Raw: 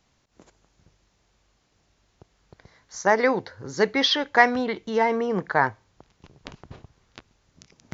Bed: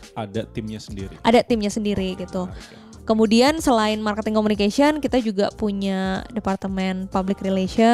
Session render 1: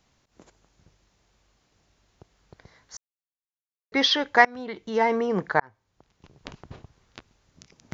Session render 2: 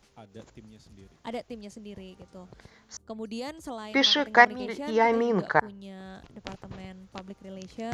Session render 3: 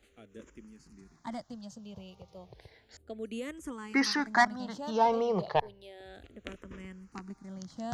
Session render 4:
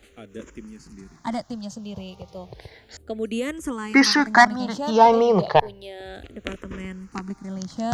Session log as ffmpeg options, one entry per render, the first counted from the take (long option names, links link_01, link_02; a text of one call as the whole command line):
ffmpeg -i in.wav -filter_complex "[0:a]asplit=5[link_01][link_02][link_03][link_04][link_05];[link_01]atrim=end=2.97,asetpts=PTS-STARTPTS,afade=type=out:start_time=2.966:duration=0.004:curve=hsin[link_06];[link_02]atrim=start=2.97:end=3.92,asetpts=PTS-STARTPTS,volume=0[link_07];[link_03]atrim=start=3.92:end=4.45,asetpts=PTS-STARTPTS,afade=type=in:duration=0.004:curve=hsin,afade=type=out:start_time=0.526:duration=0.004:curve=hsin:silence=0.0630957[link_08];[link_04]atrim=start=4.45:end=5.6,asetpts=PTS-STARTPTS,afade=type=in:duration=0.62:silence=0.0630957,afade=type=out:start_time=1.146:duration=0.004:curve=hsin[link_09];[link_05]atrim=start=5.6,asetpts=PTS-STARTPTS,afade=type=in:duration=0.9[link_10];[link_06][link_07][link_08][link_09][link_10]concat=n=5:v=0:a=1" out.wav
ffmpeg -i in.wav -i bed.wav -filter_complex "[1:a]volume=-20.5dB[link_01];[0:a][link_01]amix=inputs=2:normalize=0" out.wav
ffmpeg -i in.wav -filter_complex "[0:a]asoftclip=type=tanh:threshold=-11.5dB,asplit=2[link_01][link_02];[link_02]afreqshift=-0.32[link_03];[link_01][link_03]amix=inputs=2:normalize=1" out.wav
ffmpeg -i in.wav -af "volume=11.5dB,alimiter=limit=-2dB:level=0:latency=1" out.wav